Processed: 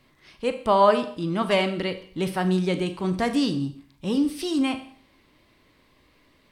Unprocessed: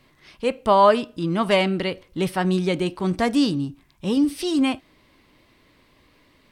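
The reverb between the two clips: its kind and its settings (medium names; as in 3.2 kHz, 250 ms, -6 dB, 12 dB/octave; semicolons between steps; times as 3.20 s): Schroeder reverb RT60 0.55 s, combs from 29 ms, DRR 9.5 dB; trim -3 dB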